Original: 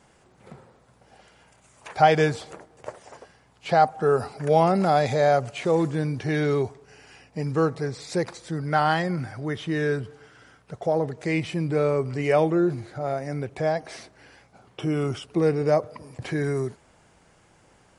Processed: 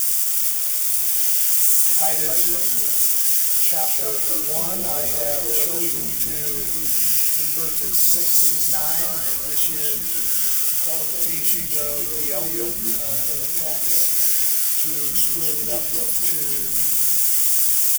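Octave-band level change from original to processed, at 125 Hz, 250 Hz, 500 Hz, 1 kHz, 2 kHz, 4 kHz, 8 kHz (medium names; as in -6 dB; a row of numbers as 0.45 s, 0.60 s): -13.5 dB, -9.5 dB, -10.0 dB, -11.5 dB, -3.0 dB, +11.5 dB, +29.5 dB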